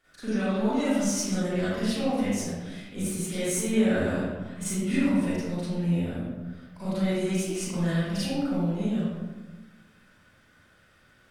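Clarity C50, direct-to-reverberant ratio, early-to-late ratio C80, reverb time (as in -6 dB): -5.0 dB, -12.5 dB, -1.0 dB, 1.3 s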